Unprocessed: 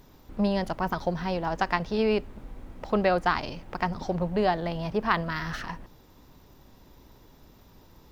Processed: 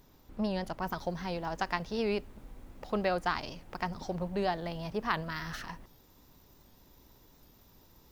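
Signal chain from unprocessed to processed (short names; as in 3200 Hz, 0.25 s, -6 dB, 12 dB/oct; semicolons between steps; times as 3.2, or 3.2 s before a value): high shelf 5400 Hz +4.5 dB, from 0.82 s +10 dB; record warp 78 rpm, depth 100 cents; gain -7 dB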